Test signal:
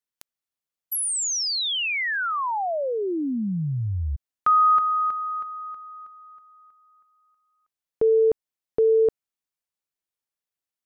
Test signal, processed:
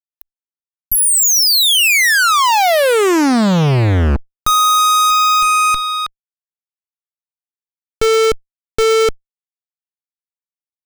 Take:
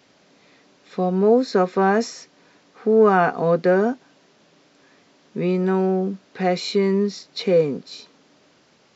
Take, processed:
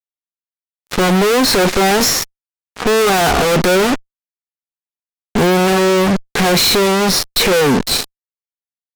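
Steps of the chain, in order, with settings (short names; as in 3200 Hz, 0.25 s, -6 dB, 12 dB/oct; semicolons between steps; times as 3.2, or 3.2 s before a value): fuzz box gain 38 dB, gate -41 dBFS; added harmonics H 4 -10 dB, 5 -12 dB, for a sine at -8.5 dBFS; gain +1.5 dB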